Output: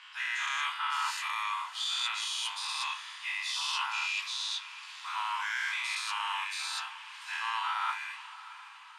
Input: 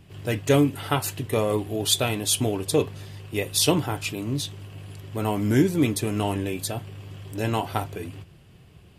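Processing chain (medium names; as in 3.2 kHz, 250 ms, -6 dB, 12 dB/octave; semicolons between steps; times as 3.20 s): every event in the spectrogram widened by 240 ms; steep high-pass 940 Hz 72 dB/octave; treble shelf 8 kHz -9.5 dB; reverse; compression 5:1, threshold -29 dBFS, peak gain reduction 13.5 dB; reverse; distance through air 89 m; echo that smears into a reverb 663 ms, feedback 58%, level -15.5 dB; on a send at -10.5 dB: reverberation RT60 0.50 s, pre-delay 3 ms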